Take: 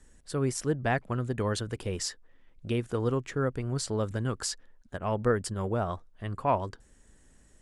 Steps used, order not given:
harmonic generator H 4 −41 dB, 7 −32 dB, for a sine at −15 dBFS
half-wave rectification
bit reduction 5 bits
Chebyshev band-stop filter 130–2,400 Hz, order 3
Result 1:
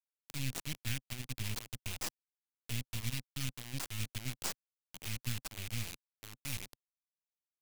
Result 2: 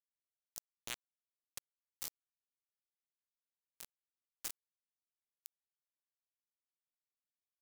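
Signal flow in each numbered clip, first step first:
harmonic generator, then bit reduction, then Chebyshev band-stop filter, then half-wave rectification
half-wave rectification, then harmonic generator, then Chebyshev band-stop filter, then bit reduction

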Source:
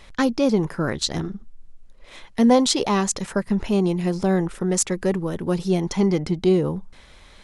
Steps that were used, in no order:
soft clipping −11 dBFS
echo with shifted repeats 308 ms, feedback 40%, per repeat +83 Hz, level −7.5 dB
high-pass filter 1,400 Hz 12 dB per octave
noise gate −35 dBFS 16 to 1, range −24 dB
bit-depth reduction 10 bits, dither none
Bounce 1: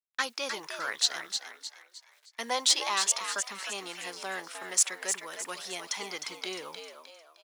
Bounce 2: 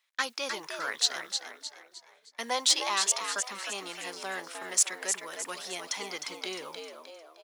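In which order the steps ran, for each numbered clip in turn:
noise gate, then bit-depth reduction, then high-pass filter, then soft clipping, then echo with shifted repeats
bit-depth reduction, then noise gate, then echo with shifted repeats, then high-pass filter, then soft clipping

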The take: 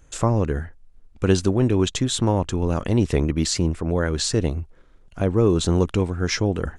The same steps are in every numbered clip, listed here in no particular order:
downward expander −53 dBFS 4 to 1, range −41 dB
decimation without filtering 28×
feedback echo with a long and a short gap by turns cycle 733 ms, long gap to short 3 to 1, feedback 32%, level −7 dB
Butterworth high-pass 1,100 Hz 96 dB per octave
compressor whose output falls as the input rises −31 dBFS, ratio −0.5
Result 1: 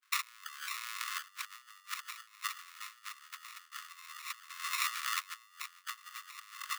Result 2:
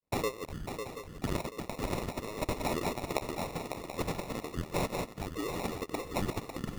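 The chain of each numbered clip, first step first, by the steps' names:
feedback echo with a long and a short gap by turns, then decimation without filtering, then compressor whose output falls as the input rises, then Butterworth high-pass, then downward expander
Butterworth high-pass, then decimation without filtering, then feedback echo with a long and a short gap by turns, then compressor whose output falls as the input rises, then downward expander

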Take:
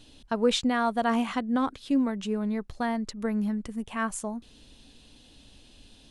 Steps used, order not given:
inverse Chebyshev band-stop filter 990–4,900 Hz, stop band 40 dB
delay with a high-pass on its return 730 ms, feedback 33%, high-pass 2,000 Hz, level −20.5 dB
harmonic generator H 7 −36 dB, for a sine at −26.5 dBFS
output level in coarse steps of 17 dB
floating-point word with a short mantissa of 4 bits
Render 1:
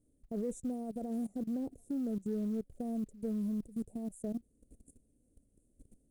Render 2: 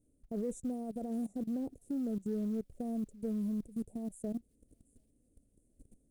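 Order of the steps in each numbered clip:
delay with a high-pass on its return, then output level in coarse steps, then inverse Chebyshev band-stop filter, then floating-point word with a short mantissa, then harmonic generator
output level in coarse steps, then inverse Chebyshev band-stop filter, then floating-point word with a short mantissa, then delay with a high-pass on its return, then harmonic generator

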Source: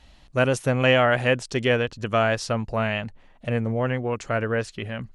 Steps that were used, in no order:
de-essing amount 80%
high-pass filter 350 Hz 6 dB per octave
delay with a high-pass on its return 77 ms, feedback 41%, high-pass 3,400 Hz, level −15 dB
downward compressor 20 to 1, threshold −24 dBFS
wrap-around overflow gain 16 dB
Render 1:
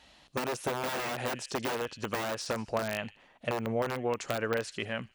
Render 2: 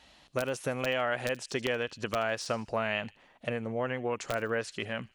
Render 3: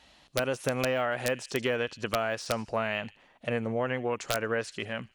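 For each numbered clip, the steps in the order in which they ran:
delay with a high-pass on its return, then wrap-around overflow, then high-pass filter, then downward compressor, then de-essing
downward compressor, then high-pass filter, then wrap-around overflow, then de-essing, then delay with a high-pass on its return
delay with a high-pass on its return, then de-essing, then high-pass filter, then downward compressor, then wrap-around overflow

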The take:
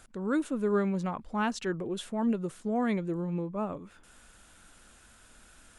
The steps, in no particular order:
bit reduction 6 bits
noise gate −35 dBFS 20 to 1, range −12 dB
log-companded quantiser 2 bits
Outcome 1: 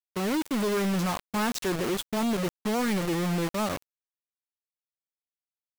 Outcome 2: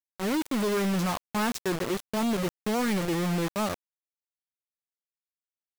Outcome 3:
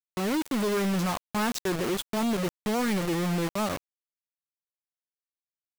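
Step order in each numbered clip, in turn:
bit reduction, then log-companded quantiser, then noise gate
noise gate, then bit reduction, then log-companded quantiser
bit reduction, then noise gate, then log-companded quantiser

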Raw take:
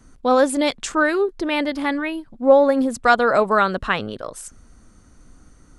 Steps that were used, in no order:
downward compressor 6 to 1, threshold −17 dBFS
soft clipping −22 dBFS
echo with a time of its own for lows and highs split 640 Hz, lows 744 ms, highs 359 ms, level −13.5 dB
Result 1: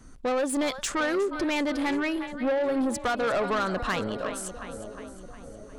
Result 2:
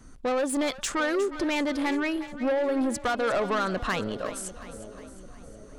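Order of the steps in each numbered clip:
downward compressor, then echo with a time of its own for lows and highs, then soft clipping
downward compressor, then soft clipping, then echo with a time of its own for lows and highs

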